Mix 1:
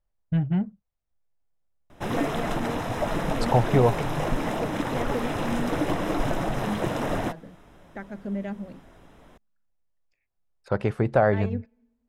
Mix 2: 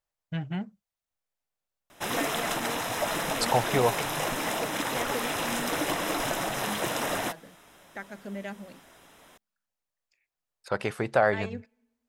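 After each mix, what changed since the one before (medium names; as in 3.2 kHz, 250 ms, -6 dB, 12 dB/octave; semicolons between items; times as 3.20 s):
master: add tilt EQ +3.5 dB/octave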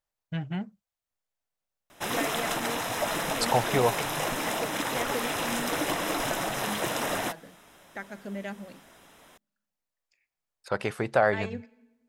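second voice: send +11.5 dB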